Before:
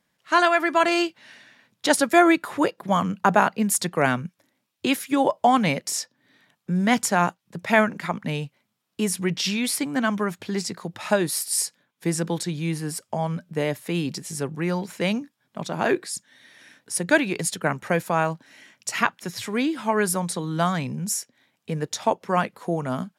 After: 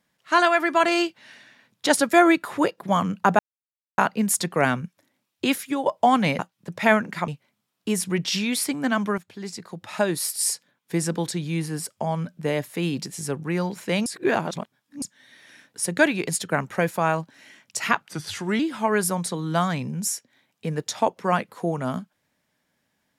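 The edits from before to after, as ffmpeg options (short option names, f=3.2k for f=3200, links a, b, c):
-filter_complex "[0:a]asplit=10[a][b][c][d][e][f][g][h][i][j];[a]atrim=end=3.39,asetpts=PTS-STARTPTS,afade=t=out:st=3.386:d=0.004:c=hsin,apad=pad_dur=0.59[k];[b]atrim=start=3.39:end=5.27,asetpts=PTS-STARTPTS,afade=t=in:d=0.004:c=hsin,afade=t=out:st=1.52:d=0.36:c=qsin:silence=0.266073[l];[c]atrim=start=5.27:end=5.802,asetpts=PTS-STARTPTS,afade=t=in:d=0.004:c=hsin:silence=0.266073[m];[d]atrim=start=7.258:end=8.152[n];[e]atrim=start=8.398:end=10.3,asetpts=PTS-STARTPTS,afade=t=out:st=1.898:d=0.004:c=hsin:silence=0.237137[o];[f]atrim=start=10.3:end=15.182,asetpts=PTS-STARTPTS,afade=t=in:d=1.14:silence=0.237137[p];[g]atrim=start=15.178:end=16.142,asetpts=PTS-STARTPTS,areverse[q];[h]atrim=start=16.138:end=19.144[r];[i]atrim=start=19.14:end=19.64,asetpts=PTS-STARTPTS,asetrate=38367,aresample=44100[s];[j]atrim=start=19.636[t];[k][l][m]concat=n=3:v=0:a=1[u];[u][n]acrossfade=d=0.004:c1=hsin:c2=hsin[v];[o][p]concat=n=2:v=0:a=1[w];[v][w]acrossfade=d=0.004:c1=hsin:c2=hsin[x];[x][q]acrossfade=d=0.004:c1=hsin:c2=hsin[y];[y][r]acrossfade=d=0.004:c1=hsin:c2=hsin[z];[z][s]acrossfade=d=0.004:c1=hsin:c2=hsin[aa];[aa][t]acrossfade=d=0.004:c1=hsin:c2=hsin"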